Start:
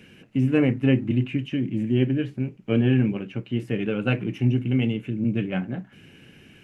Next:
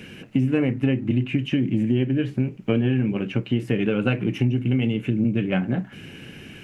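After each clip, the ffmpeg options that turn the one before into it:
ffmpeg -i in.wav -af "acompressor=threshold=-27dB:ratio=6,volume=9dB" out.wav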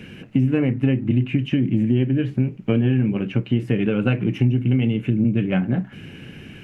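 ffmpeg -i in.wav -af "bass=frequency=250:gain=4,treble=frequency=4000:gain=-5" out.wav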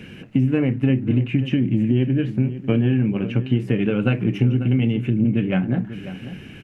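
ffmpeg -i in.wav -filter_complex "[0:a]asplit=2[link_01][link_02];[link_02]adelay=542.3,volume=-13dB,highshelf=frequency=4000:gain=-12.2[link_03];[link_01][link_03]amix=inputs=2:normalize=0" out.wav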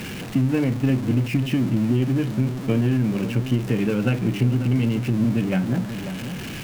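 ffmpeg -i in.wav -af "aeval=exprs='val(0)+0.5*0.0501*sgn(val(0))':channel_layout=same,volume=-3dB" out.wav

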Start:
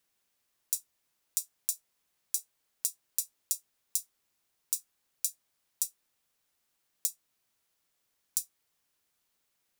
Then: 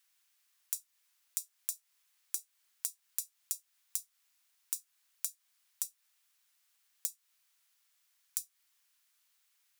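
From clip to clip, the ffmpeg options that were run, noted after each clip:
ffmpeg -i in.wav -af "highpass=1300,acompressor=threshold=-37dB:ratio=4,volume=4dB" out.wav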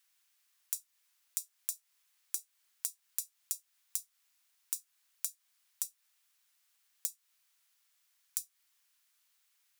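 ffmpeg -i in.wav -af anull out.wav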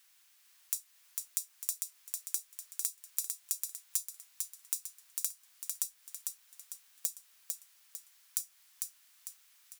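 ffmpeg -i in.wav -af "alimiter=limit=-15dB:level=0:latency=1:release=155,aecho=1:1:450|900|1350|1800|2250:0.631|0.271|0.117|0.0502|0.0216,volume=8.5dB" out.wav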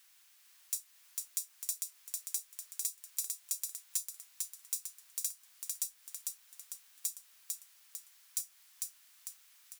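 ffmpeg -i in.wav -af "asoftclip=type=tanh:threshold=-21dB,volume=1.5dB" out.wav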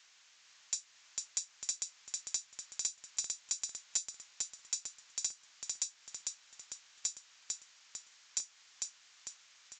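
ffmpeg -i in.wav -af "aresample=16000,aresample=44100,volume=5.5dB" out.wav

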